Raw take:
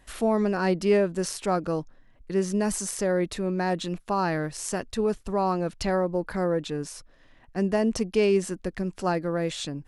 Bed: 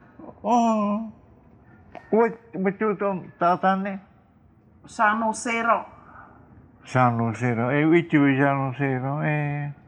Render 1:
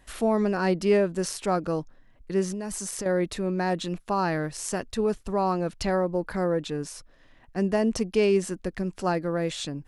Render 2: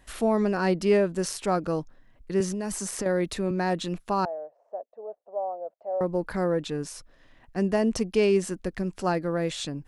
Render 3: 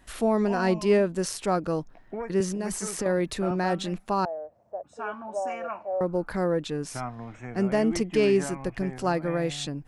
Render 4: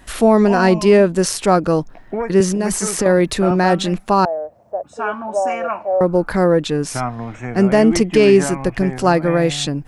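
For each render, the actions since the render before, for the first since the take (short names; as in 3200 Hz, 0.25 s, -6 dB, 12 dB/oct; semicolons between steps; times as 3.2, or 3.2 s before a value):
2.51–3.06 compressor, threshold -29 dBFS
2.4–3.51 three-band squash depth 40%; 4.25–6.01 Butterworth band-pass 630 Hz, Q 2.9
add bed -15.5 dB
gain +11.5 dB; limiter -2 dBFS, peak gain reduction 3 dB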